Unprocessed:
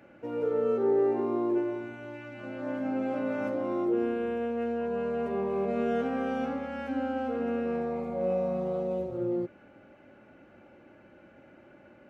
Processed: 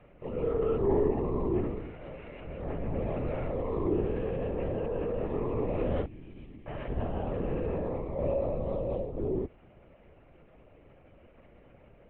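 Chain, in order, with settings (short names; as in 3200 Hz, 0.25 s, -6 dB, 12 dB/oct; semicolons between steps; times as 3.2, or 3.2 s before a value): 6.05–6.67 EQ curve 120 Hz 0 dB, 660 Hz -28 dB, 1300 Hz -27 dB, 2300 Hz -11 dB; LPC vocoder at 8 kHz whisper; bell 1500 Hz -13.5 dB 0.21 oct; gain -1 dB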